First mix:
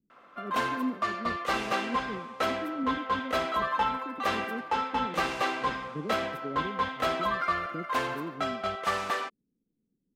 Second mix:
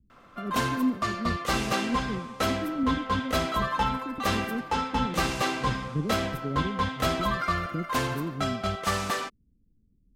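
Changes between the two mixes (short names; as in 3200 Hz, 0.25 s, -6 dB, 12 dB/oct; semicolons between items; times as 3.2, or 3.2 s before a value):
speech: add resonant low shelf 110 Hz +11 dB, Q 1.5; master: add tone controls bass +15 dB, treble +10 dB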